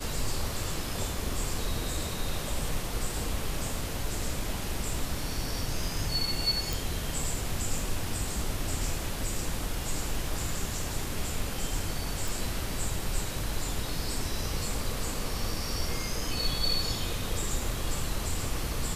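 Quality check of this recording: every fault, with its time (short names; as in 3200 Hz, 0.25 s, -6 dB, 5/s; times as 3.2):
6.73 pop
12.28 pop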